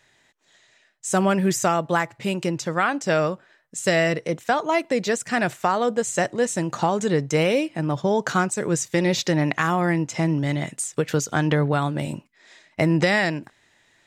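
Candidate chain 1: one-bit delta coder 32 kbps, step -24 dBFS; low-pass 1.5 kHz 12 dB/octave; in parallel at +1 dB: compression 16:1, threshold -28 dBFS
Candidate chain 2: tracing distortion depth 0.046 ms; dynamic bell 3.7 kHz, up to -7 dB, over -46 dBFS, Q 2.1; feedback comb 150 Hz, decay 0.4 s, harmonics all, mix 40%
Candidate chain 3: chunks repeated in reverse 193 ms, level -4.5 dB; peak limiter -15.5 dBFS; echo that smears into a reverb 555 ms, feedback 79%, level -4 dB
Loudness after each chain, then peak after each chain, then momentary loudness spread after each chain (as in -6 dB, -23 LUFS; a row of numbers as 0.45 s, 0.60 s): -21.5 LUFS, -26.5 LUFS, -22.5 LUFS; -6.0 dBFS, -10.5 dBFS, -9.0 dBFS; 8 LU, 6 LU, 2 LU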